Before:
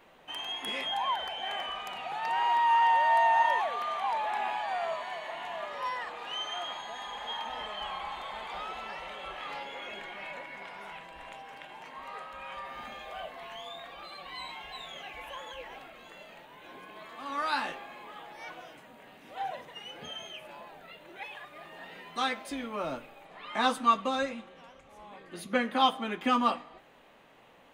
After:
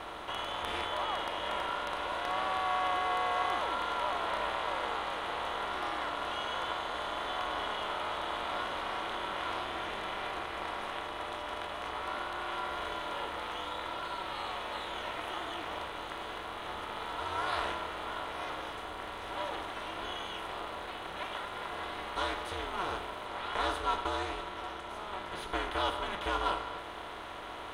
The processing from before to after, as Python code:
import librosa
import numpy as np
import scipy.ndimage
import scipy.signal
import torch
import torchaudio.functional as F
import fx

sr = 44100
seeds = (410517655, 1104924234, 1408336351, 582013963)

y = fx.bin_compress(x, sr, power=0.4)
y = y * np.sin(2.0 * np.pi * 190.0 * np.arange(len(y)) / sr)
y = F.gain(torch.from_numpy(y), -8.0).numpy()